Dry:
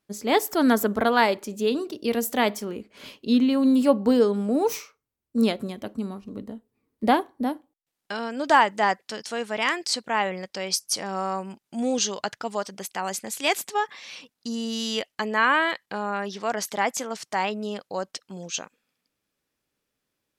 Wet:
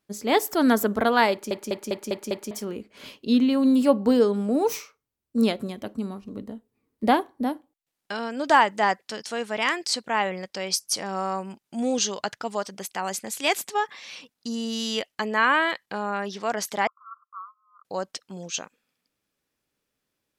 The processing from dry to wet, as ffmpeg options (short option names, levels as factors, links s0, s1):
-filter_complex "[0:a]asettb=1/sr,asplit=3[s0][s1][s2];[s0]atrim=end=16.874[s3];[s1]atrim=start=16.87:end=17.85,asetpts=PTS-STARTPTS,afade=t=in:d=0.004:c=qsin,afade=t=out:st=0.976:d=0.004:c=qsin,asuperpass=centerf=1200:order=12:qfactor=3.6[s4];[s2]atrim=start=17.846[s5];[s3][s4]acrossfade=d=0.004:c1=hsin:c2=qsin[s6];[s6][s5]acrossfade=d=0.004:c1=qsin:c2=hsin,asplit=7[s7][s8][s9][s10][s11][s12][s13];[s7]atrim=end=1.512[s14];[s8]atrim=start=1.308:end=1.512[s15];[s9]atrim=start=1.308:end=1.512[s16];[s10]atrim=start=1.308:end=1.512[s17];[s11]atrim=start=1.308:end=1.512[s18];[s12]atrim=start=1.308:end=1.512[s19];[s13]atrim=start=2.508[s20];[s14][s15]acrossfade=d=0.004:c1=hsin:c2=hsin[s21];[s21][s16]acrossfade=d=0.004:c1=hsin:c2=hsin[s22];[s22][s17]acrossfade=d=0.004:c1=hsin:c2=hsin[s23];[s23][s18]acrossfade=d=0.004:c1=hsin:c2=hsin[s24];[s24][s19]acrossfade=d=0.004:c1=hsin:c2=hsin[s25];[s25][s20]acrossfade=d=0.004:c1=hsin:c2=hsin"